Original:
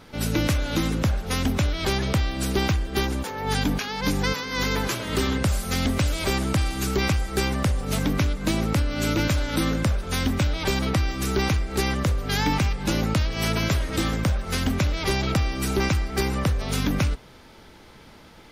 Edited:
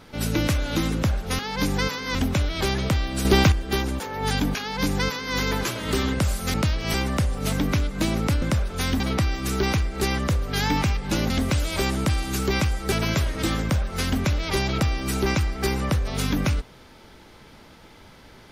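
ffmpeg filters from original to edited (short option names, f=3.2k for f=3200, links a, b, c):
-filter_complex "[0:a]asplit=11[a][b][c][d][e][f][g][h][i][j][k];[a]atrim=end=1.392[l];[b]atrim=start=3.838:end=4.602[m];[c]atrim=start=1.388:end=2.492[n];[d]atrim=start=2.488:end=2.762,asetpts=PTS-STARTPTS,volume=6dB[o];[e]atrim=start=2.758:end=5.782[p];[f]atrim=start=13.058:end=13.462[q];[g]atrim=start=7.398:end=8.882[r];[h]atrim=start=9.748:end=10.332[s];[i]atrim=start=10.758:end=13.062[t];[j]atrim=start=5.778:end=7.402[u];[k]atrim=start=13.458[v];[l][m]acrossfade=d=0.004:c1=hsin:c2=hsin[w];[w][n]acrossfade=d=0.004:c1=hsin:c2=hsin[x];[x][o]acrossfade=d=0.004:c1=hsin:c2=hsin[y];[y][p]acrossfade=d=0.004:c1=hsin:c2=hsin[z];[z][q]acrossfade=d=0.004:c1=hsin:c2=hsin[aa];[aa][r]acrossfade=d=0.004:c1=hsin:c2=hsin[ab];[ab][s]acrossfade=d=0.004:c1=hsin:c2=hsin[ac];[ac][t]acrossfade=d=0.004:c1=hsin:c2=hsin[ad];[ad][u]acrossfade=d=0.004:c1=hsin:c2=hsin[ae];[ae][v]acrossfade=d=0.004:c1=hsin:c2=hsin"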